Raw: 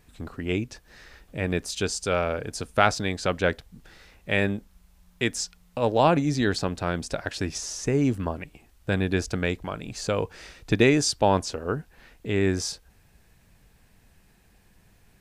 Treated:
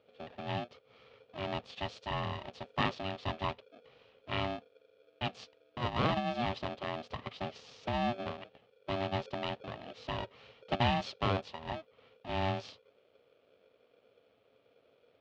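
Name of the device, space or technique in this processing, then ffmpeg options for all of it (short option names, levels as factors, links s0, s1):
ring modulator pedal into a guitar cabinet: -af "aeval=exprs='val(0)*sgn(sin(2*PI*480*n/s))':c=same,highpass=91,equalizer=f=110:t=q:w=4:g=5,equalizer=f=160:t=q:w=4:g=-4,equalizer=f=330:t=q:w=4:g=-9,equalizer=f=970:t=q:w=4:g=-6,equalizer=f=1500:t=q:w=4:g=-10,equalizer=f=2100:t=q:w=4:g=-7,lowpass=f=3400:w=0.5412,lowpass=f=3400:w=1.3066,volume=0.447"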